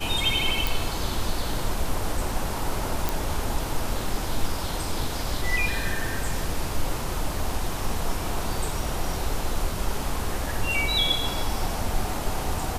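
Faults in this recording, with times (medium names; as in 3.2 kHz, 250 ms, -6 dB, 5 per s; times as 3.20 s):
0.67 s: pop
3.09 s: pop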